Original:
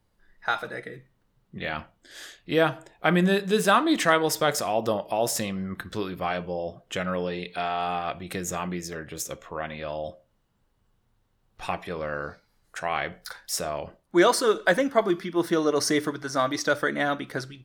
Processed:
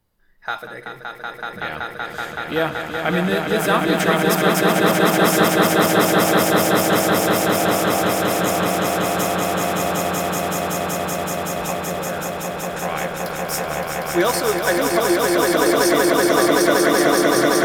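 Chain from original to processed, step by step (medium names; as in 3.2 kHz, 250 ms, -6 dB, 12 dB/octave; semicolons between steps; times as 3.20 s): peaking EQ 14 kHz +11 dB 0.49 oct; on a send: echo with a slow build-up 189 ms, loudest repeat 8, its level -3 dB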